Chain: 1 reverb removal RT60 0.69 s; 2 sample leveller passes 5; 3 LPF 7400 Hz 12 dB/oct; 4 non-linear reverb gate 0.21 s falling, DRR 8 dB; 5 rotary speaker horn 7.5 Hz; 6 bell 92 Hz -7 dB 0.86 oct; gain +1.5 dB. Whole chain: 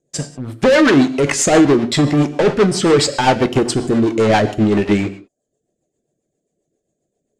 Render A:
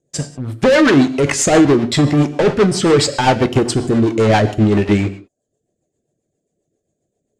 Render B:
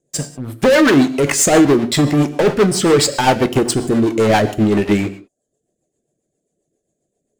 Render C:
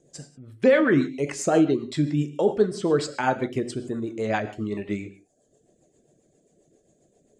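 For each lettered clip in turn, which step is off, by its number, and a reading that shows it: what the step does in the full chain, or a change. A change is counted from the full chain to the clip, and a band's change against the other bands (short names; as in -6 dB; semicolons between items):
6, 125 Hz band +3.0 dB; 3, 8 kHz band +3.0 dB; 2, crest factor change +4.0 dB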